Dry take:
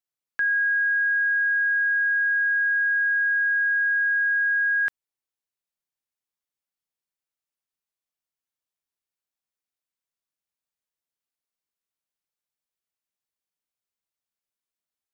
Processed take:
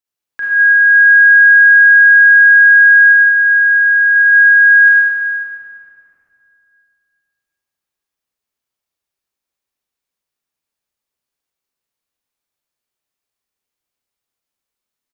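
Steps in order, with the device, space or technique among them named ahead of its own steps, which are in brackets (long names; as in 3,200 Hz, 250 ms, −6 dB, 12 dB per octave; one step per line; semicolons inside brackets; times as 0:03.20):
0:03.12–0:04.16: notch filter 1,700 Hz, Q 11
cave (single-tap delay 381 ms −16 dB; convolution reverb RT60 2.7 s, pre-delay 30 ms, DRR −7 dB)
level +1.5 dB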